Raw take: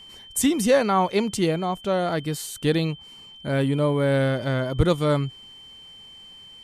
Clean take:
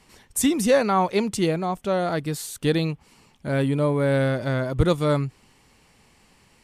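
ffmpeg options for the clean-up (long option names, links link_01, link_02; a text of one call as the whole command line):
ffmpeg -i in.wav -af "bandreject=frequency=3100:width=30" out.wav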